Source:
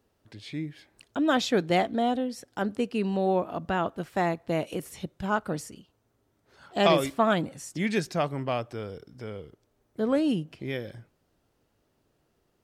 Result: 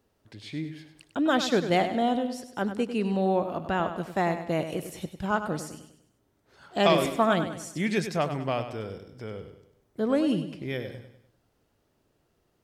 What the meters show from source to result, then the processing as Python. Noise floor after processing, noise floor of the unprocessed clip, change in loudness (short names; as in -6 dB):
-72 dBFS, -72 dBFS, +0.5 dB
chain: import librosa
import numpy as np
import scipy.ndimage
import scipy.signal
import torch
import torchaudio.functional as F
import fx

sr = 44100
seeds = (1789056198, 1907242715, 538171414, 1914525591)

y = fx.echo_feedback(x, sr, ms=99, feedback_pct=43, wet_db=-10)